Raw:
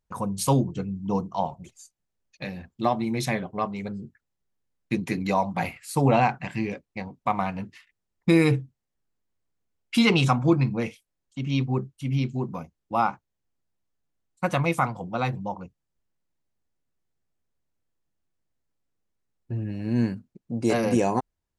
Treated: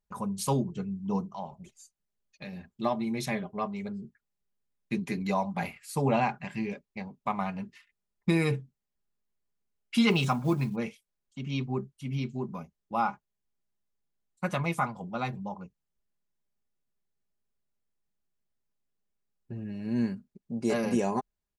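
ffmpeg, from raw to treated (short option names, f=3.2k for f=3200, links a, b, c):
-filter_complex "[0:a]asettb=1/sr,asplit=3[a][b][c];[a]atrim=end=1.254[d];[b]atrim=start=1.25:end=2.53,asetpts=PTS-STARTPTS,afade=t=in:d=0.004:c=qsin,afade=t=out:st=1.276:d=0.004:c=qsin,acompressor=threshold=-37dB:ratio=1.5:attack=3.2:release=140:knee=1:detection=peak[e];[c]atrim=start=2.526[f];[d][e]acrossfade=d=0.004:c1=hsin:c2=qsin[g];[g][f]acrossfade=d=0.004:c1=qsin:c2=hsin,asettb=1/sr,asplit=3[h][i][j];[h]atrim=end=10.104[k];[i]atrim=start=10.1:end=10.76,asetpts=PTS-STARTPTS,afade=t=in:d=0.004:c=qsin,afade=t=out:st=0.656:d=0.004:c=qsin,acrusher=bits=8:mode=log:mix=0:aa=0.000001[l];[j]atrim=start=10.756[m];[k][l]acrossfade=d=0.004:c1=hsin:c2=qsin[n];[n][m]acrossfade=d=0.004:c1=qsin:c2=hsin,aecho=1:1:4.9:0.49,volume=-6dB"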